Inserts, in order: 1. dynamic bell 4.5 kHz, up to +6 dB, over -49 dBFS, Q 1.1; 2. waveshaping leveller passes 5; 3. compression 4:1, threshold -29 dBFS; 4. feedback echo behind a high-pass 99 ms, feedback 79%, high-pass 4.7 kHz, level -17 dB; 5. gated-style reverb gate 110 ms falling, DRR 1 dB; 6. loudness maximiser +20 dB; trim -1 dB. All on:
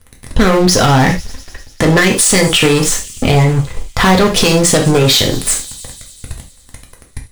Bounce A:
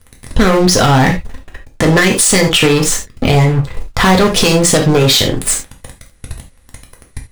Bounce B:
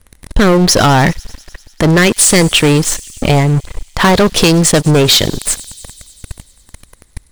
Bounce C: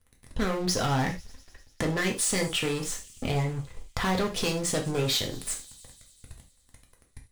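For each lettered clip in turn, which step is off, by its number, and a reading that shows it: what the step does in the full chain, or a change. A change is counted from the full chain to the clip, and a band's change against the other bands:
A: 4, momentary loudness spread change -6 LU; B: 5, momentary loudness spread change -3 LU; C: 6, crest factor change +5.5 dB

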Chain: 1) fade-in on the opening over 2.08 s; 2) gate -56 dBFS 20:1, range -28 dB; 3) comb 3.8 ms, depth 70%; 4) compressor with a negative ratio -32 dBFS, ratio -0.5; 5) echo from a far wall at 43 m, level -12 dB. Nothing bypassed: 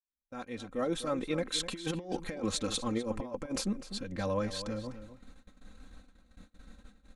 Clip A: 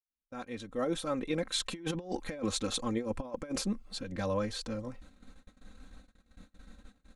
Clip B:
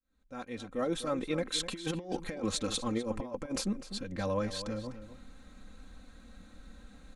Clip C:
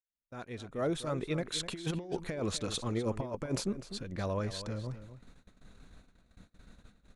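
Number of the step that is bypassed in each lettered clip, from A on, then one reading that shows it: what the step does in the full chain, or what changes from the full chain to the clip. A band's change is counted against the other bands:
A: 5, echo-to-direct -13.0 dB to none; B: 2, momentary loudness spread change +10 LU; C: 3, 125 Hz band +6.0 dB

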